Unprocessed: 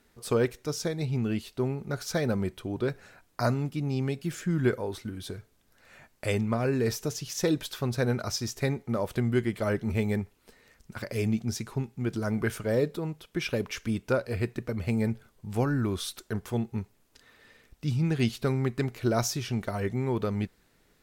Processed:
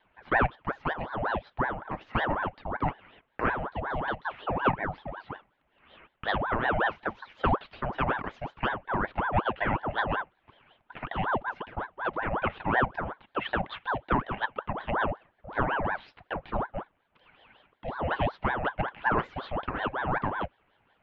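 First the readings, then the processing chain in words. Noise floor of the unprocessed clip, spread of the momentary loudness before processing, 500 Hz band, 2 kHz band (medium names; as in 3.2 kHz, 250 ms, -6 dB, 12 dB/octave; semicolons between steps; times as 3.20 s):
-66 dBFS, 8 LU, -3.5 dB, +7.5 dB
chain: band-stop 1.4 kHz, Q 5.7; mistuned SSB +53 Hz 190–2500 Hz; ring modulator with a swept carrier 800 Hz, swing 65%, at 5.4 Hz; trim +4 dB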